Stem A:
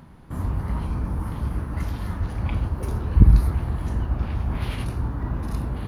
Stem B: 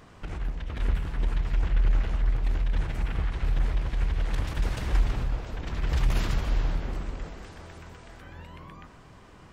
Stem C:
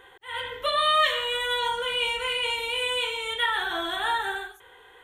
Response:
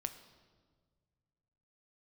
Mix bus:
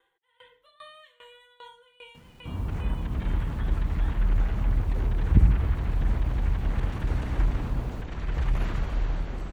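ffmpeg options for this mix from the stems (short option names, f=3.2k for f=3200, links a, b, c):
-filter_complex "[0:a]lowpass=f=1.1k:p=1,acrusher=bits=8:mix=0:aa=0.000001,adelay=2150,volume=-5dB[a];[1:a]bandreject=f=5.1k:w=14,adelay=2450,volume=-1.5dB[b];[2:a]aecho=1:1:6.1:0.5,aeval=exprs='val(0)*pow(10,-23*if(lt(mod(2.5*n/s,1),2*abs(2.5)/1000),1-mod(2.5*n/s,1)/(2*abs(2.5)/1000),(mod(2.5*n/s,1)-2*abs(2.5)/1000)/(1-2*abs(2.5)/1000))/20)':c=same,volume=-18dB[c];[a][b][c]amix=inputs=3:normalize=0,acrossover=split=2500[d][e];[e]acompressor=threshold=-53dB:ratio=4:attack=1:release=60[f];[d][f]amix=inputs=2:normalize=0"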